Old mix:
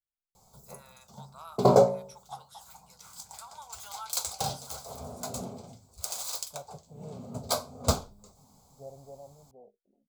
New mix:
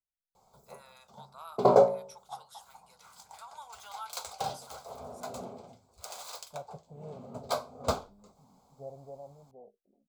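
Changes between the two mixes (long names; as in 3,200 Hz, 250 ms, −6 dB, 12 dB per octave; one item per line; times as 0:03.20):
second voice: remove high-frequency loss of the air 460 metres
background: add bass and treble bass −10 dB, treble −12 dB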